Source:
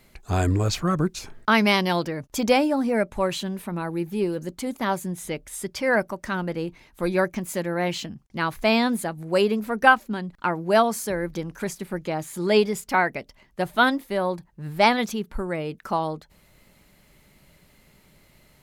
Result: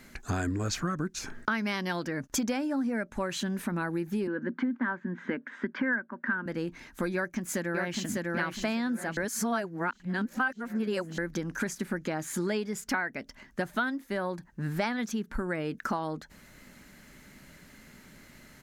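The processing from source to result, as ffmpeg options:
ffmpeg -i in.wav -filter_complex "[0:a]asettb=1/sr,asplit=3[link_01][link_02][link_03];[link_01]atrim=end=4.274[link_04];[link_02]atrim=start=4.27:end=6.46,asetpts=PTS-STARTPTS,afade=type=in:duration=0.004:curve=qsin,afade=type=out:start_time=2.186:duration=0.004:curve=qsin,highpass=frequency=190:width=0.5412,highpass=frequency=190:width=1.3066,equalizer=frequency=240:width_type=q:width=4:gain=9,equalizer=frequency=700:width_type=q:width=4:gain=-6,equalizer=frequency=990:width_type=q:width=4:gain=5,equalizer=frequency=1600:width_type=q:width=4:gain=9,equalizer=frequency=2500:width_type=q:width=4:gain=-4,lowpass=frequency=2600:width=0.5412,lowpass=frequency=2600:width=1.3066[link_05];[link_03]atrim=start=6.456[link_06];[link_04][link_05]acrossfade=duration=0.004:curve1=hsin:curve2=qsin[link_07];[link_07][link_06]acrossfade=duration=0.004:curve1=qsin:curve2=hsin,asplit=2[link_08][link_09];[link_09]afade=type=in:start_time=7.14:duration=0.01,afade=type=out:start_time=8.26:duration=0.01,aecho=0:1:600|1200|1800|2400|3000:0.595662|0.238265|0.0953059|0.0381224|0.015249[link_10];[link_08][link_10]amix=inputs=2:normalize=0,asplit=3[link_11][link_12][link_13];[link_11]atrim=end=9.172[link_14];[link_12]atrim=start=9.168:end=11.182,asetpts=PTS-STARTPTS,areverse[link_15];[link_13]atrim=start=11.178[link_16];[link_14][link_15]acrossfade=duration=0.004:curve1=hsin:curve2=hsin[link_17];[link_17][link_16]acrossfade=duration=0.004:curve1=hsin:curve2=hsin,equalizer=frequency=250:width_type=o:width=0.67:gain=10,equalizer=frequency=1600:width_type=o:width=0.67:gain=11,equalizer=frequency=6300:width_type=o:width=0.67:gain=7,acompressor=threshold=-28dB:ratio=8" out.wav

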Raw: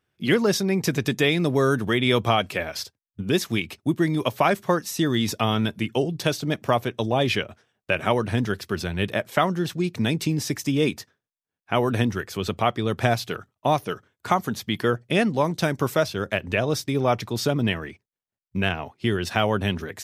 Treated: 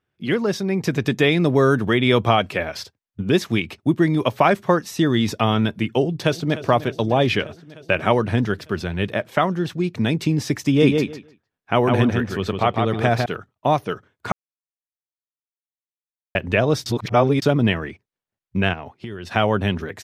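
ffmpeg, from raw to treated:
ffmpeg -i in.wav -filter_complex "[0:a]asplit=2[link_01][link_02];[link_02]afade=type=in:start_time=6:duration=0.01,afade=type=out:start_time=6.6:duration=0.01,aecho=0:1:300|600|900|1200|1500|1800|2100|2400|2700|3000|3300:0.177828|0.133371|0.100028|0.0750212|0.0562659|0.0421994|0.0316496|0.0237372|0.0178029|0.0133522|0.0100141[link_03];[link_01][link_03]amix=inputs=2:normalize=0,asettb=1/sr,asplit=3[link_04][link_05][link_06];[link_04]atrim=end=10.654[link_07];[link_05]atrim=start=10.65:end=13.26,asetpts=PTS-STARTPTS,afade=type=in:duration=0.004:curve=qsin,afade=type=out:start_time=2.606:duration=0.004:curve=qsin,asplit=2[link_08][link_09];[link_09]adelay=152,lowpass=frequency=4700:poles=1,volume=-4dB,asplit=2[link_10][link_11];[link_11]adelay=152,lowpass=frequency=4700:poles=1,volume=0.17,asplit=2[link_12][link_13];[link_13]adelay=152,lowpass=frequency=4700:poles=1,volume=0.17[link_14];[link_08][link_10][link_12][link_14]amix=inputs=4:normalize=0,atrim=end_sample=115101[link_15];[link_06]atrim=start=13.256[link_16];[link_07][link_15]acrossfade=duration=0.004:curve1=hsin:curve2=qsin[link_17];[link_17][link_16]acrossfade=duration=0.004:curve1=qsin:curve2=hsin,asettb=1/sr,asplit=3[link_18][link_19][link_20];[link_18]atrim=end=18.734[link_21];[link_19]atrim=start=18.73:end=19.32,asetpts=PTS-STARTPTS,afade=type=in:duration=0.004:curve=qsin,afade=type=out:start_time=0.586:duration=0.004:curve=qsin,acompressor=threshold=-32dB:ratio=6:attack=3.2:release=140:knee=1:detection=peak[link_22];[link_20]atrim=start=19.316[link_23];[link_21][link_22]acrossfade=duration=0.004:curve1=hsin:curve2=qsin[link_24];[link_24][link_23]acrossfade=duration=0.004:curve1=qsin:curve2=hsin,asplit=5[link_25][link_26][link_27][link_28][link_29];[link_25]atrim=end=14.32,asetpts=PTS-STARTPTS,afade=type=out:start_time=14.316:duration=0.004:curve=hsin[link_30];[link_26]atrim=start=14.32:end=16.35,asetpts=PTS-STARTPTS,volume=0[link_31];[link_27]atrim=start=16.35:end=16.862,asetpts=PTS-STARTPTS,afade=type=in:duration=0.004:curve=hsin[link_32];[link_28]atrim=start=16.858:end=17.422,asetpts=PTS-STARTPTS,areverse[link_33];[link_29]atrim=start=17.418[link_34];[link_30][link_31][link_32]concat=n=3:v=0:a=1[link_35];[link_35][link_33]acrossfade=duration=0.004:curve1=hsin:curve2=hsin[link_36];[link_36][link_34]acrossfade=duration=0.004:curve1=hsin:curve2=hsin,highshelf=frequency=5400:gain=-12,dynaudnorm=framelen=150:gausssize=13:maxgain=11.5dB,volume=-1dB" out.wav

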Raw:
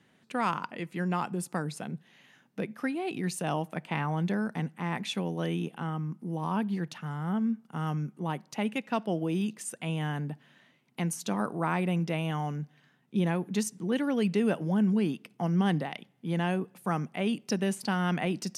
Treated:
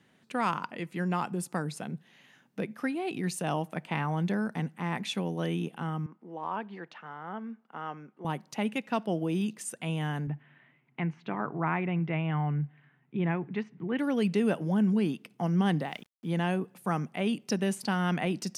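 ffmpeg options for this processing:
ffmpeg -i in.wav -filter_complex "[0:a]asettb=1/sr,asplit=3[link_01][link_02][link_03];[link_01]atrim=end=6.064[link_04];[link_02]atrim=start=6.06:end=8.25,asetpts=PTS-STARTPTS,afade=type=in:duration=0.004:curve=qsin,afade=type=out:start_time=2.186:duration=0.004:curve=qsin,highpass=440,lowpass=2500[link_05];[link_03]atrim=start=8.246[link_06];[link_04][link_05]acrossfade=duration=0.004:curve1=hsin:curve2=qsin[link_07];[link_07][link_06]acrossfade=duration=0.004:curve1=qsin:curve2=hsin,asettb=1/sr,asplit=3[link_08][link_09][link_10];[link_08]atrim=end=10.274[link_11];[link_09]atrim=start=10.27:end=13.99,asetpts=PTS-STARTPTS,afade=type=in:duration=0.004:curve=qsin,afade=type=out:start_time=3.716:duration=0.004:curve=qsin,highpass=100,equalizer=frequency=140:width_type=q:width=4:gain=9,equalizer=frequency=200:width_type=q:width=4:gain=-7,equalizer=frequency=530:width_type=q:width=4:gain=-6,equalizer=frequency=2100:width_type=q:width=4:gain=4,lowpass=frequency=2600:width=0.5412,lowpass=frequency=2600:width=1.3066[link_12];[link_10]atrim=start=13.986[link_13];[link_11][link_12]acrossfade=duration=0.004:curve1=hsin:curve2=qsin[link_14];[link_14][link_13]acrossfade=duration=0.004:curve1=qsin:curve2=hsin,asettb=1/sr,asplit=3[link_15][link_16][link_17];[link_15]atrim=end=15.794[link_18];[link_16]atrim=start=15.79:end=16.31,asetpts=PTS-STARTPTS,afade=type=in:duration=0.004:curve=qsin,afade=type=out:start_time=0.516:duration=0.004:curve=qsin,aeval=exprs='val(0)*gte(abs(val(0)),0.00168)':channel_layout=same[link_19];[link_17]atrim=start=16.306[link_20];[link_18][link_19]acrossfade=duration=0.004:curve1=hsin:curve2=qsin[link_21];[link_21][link_20]acrossfade=duration=0.004:curve1=qsin:curve2=hsin" out.wav

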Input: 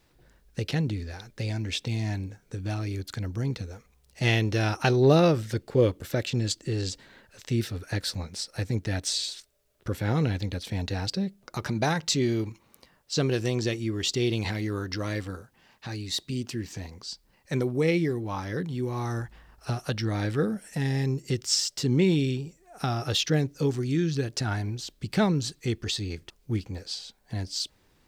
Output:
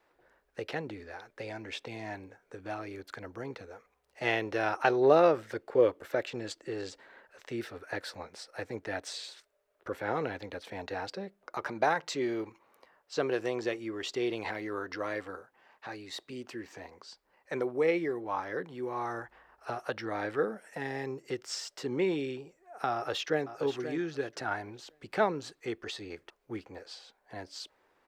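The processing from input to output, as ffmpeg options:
ffmpeg -i in.wav -filter_complex "[0:a]asplit=2[link_01][link_02];[link_02]afade=type=in:start_time=22.93:duration=0.01,afade=type=out:start_time=23.58:duration=0.01,aecho=0:1:530|1060|1590:0.298538|0.0597077|0.0119415[link_03];[link_01][link_03]amix=inputs=2:normalize=0,acrossover=split=380 2100:gain=0.0708 1 0.158[link_04][link_05][link_06];[link_04][link_05][link_06]amix=inputs=3:normalize=0,volume=2dB" out.wav

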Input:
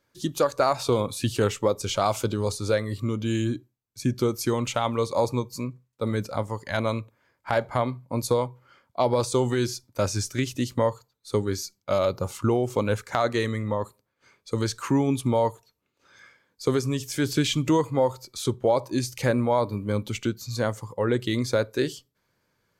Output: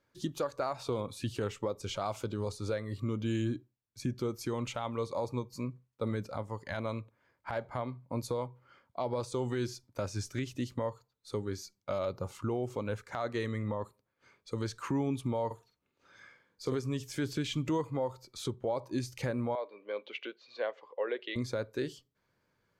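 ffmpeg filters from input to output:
ffmpeg -i in.wav -filter_complex "[0:a]asettb=1/sr,asplit=3[link_01][link_02][link_03];[link_01]atrim=end=15.464[link_04];[link_02]atrim=start=15.46:end=16.75,asetpts=PTS-STARTPTS,afade=type=in:duration=0.004:curve=qsin,afade=type=out:start_time=1.286:duration=0.004:curve=qsin,asplit=2[link_05][link_06];[link_06]adelay=46,volume=-6.5dB[link_07];[link_05][link_07]amix=inputs=2:normalize=0,atrim=end_sample=56889[link_08];[link_03]atrim=start=16.746[link_09];[link_04][link_08]acrossfade=duration=0.004:curve1=hsin:curve2=qsin[link_10];[link_10][link_09]acrossfade=duration=0.004:curve1=qsin:curve2=hsin,asettb=1/sr,asplit=3[link_11][link_12][link_13];[link_11]atrim=end=19.554[link_14];[link_12]atrim=start=19.55:end=21.36,asetpts=PTS-STARTPTS,afade=type=in:duration=0.004:curve=qsin,afade=type=out:start_time=1.806:duration=0.004:curve=qsin,highpass=frequency=470:width=0.5412,highpass=frequency=470:width=1.3066,equalizer=frequency=890:width_type=q:width=4:gain=-7,equalizer=frequency=1300:width_type=q:width=4:gain=-8,equalizer=frequency=2700:width_type=q:width=4:gain=3,lowpass=frequency=3500:width=0.5412,lowpass=frequency=3500:width=1.3066[link_15];[link_13]atrim=start=21.356[link_16];[link_14][link_15]acrossfade=duration=0.004:curve1=hsin:curve2=qsin[link_17];[link_17][link_16]acrossfade=duration=0.004:curve1=qsin:curve2=hsin,highshelf=frequency=5200:gain=-9,alimiter=limit=-20dB:level=0:latency=1:release=435,volume=-3.5dB" out.wav

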